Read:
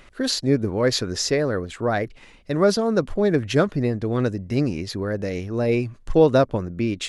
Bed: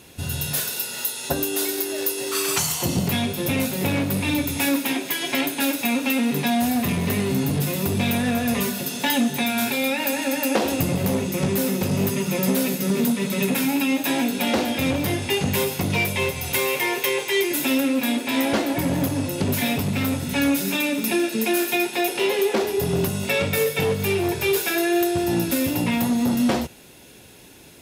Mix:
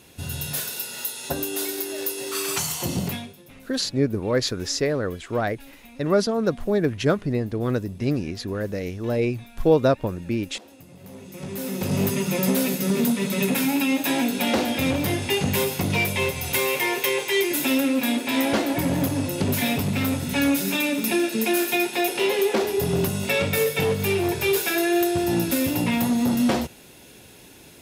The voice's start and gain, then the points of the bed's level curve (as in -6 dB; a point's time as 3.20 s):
3.50 s, -2.0 dB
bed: 3.07 s -3.5 dB
3.45 s -25.5 dB
10.87 s -25.5 dB
11.95 s -0.5 dB